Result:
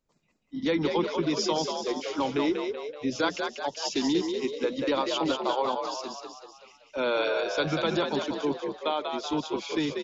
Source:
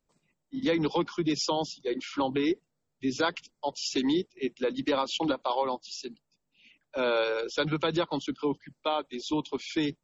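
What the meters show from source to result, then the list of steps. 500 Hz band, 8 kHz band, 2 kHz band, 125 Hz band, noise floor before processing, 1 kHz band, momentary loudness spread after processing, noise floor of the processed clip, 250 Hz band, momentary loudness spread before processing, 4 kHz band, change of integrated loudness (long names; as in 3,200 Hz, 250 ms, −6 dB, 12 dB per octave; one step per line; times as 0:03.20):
+2.0 dB, can't be measured, +2.0 dB, 0.0 dB, −81 dBFS, +2.0 dB, 6 LU, −67 dBFS, +1.0 dB, 8 LU, +1.5 dB, +1.5 dB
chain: downsampling to 16,000 Hz
echo with shifted repeats 190 ms, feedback 51%, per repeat +55 Hz, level −5 dB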